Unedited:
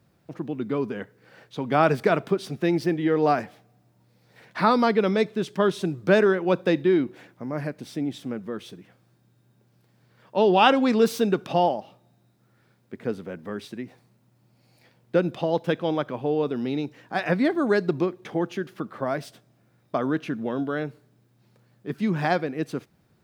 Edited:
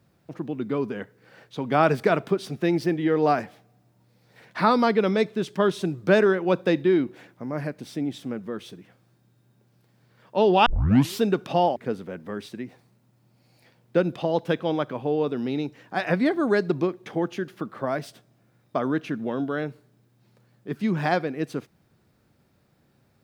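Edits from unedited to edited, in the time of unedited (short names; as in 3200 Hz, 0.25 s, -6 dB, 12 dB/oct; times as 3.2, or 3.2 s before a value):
10.66 tape start 0.56 s
11.76–12.95 cut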